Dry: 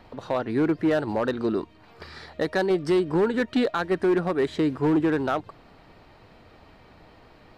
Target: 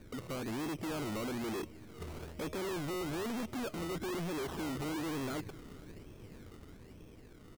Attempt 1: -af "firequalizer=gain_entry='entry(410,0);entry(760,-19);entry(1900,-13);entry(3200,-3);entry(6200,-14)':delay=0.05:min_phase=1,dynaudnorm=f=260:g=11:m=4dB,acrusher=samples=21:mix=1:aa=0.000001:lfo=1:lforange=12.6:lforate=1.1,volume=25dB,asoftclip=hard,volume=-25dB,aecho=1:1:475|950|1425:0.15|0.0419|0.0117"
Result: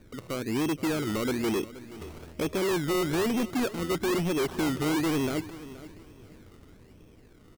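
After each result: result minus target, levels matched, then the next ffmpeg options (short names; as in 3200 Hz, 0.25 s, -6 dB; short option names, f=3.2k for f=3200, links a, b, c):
echo-to-direct +7.5 dB; overloaded stage: distortion -4 dB
-af "firequalizer=gain_entry='entry(410,0);entry(760,-19);entry(1900,-13);entry(3200,-3);entry(6200,-14)':delay=0.05:min_phase=1,dynaudnorm=f=260:g=11:m=4dB,acrusher=samples=21:mix=1:aa=0.000001:lfo=1:lforange=12.6:lforate=1.1,volume=25dB,asoftclip=hard,volume=-25dB,aecho=1:1:475|950:0.0631|0.0177"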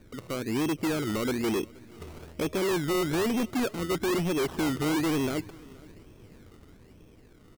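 overloaded stage: distortion -4 dB
-af "firequalizer=gain_entry='entry(410,0);entry(760,-19);entry(1900,-13);entry(3200,-3);entry(6200,-14)':delay=0.05:min_phase=1,dynaudnorm=f=260:g=11:m=4dB,acrusher=samples=21:mix=1:aa=0.000001:lfo=1:lforange=12.6:lforate=1.1,volume=36.5dB,asoftclip=hard,volume=-36.5dB,aecho=1:1:475|950:0.0631|0.0177"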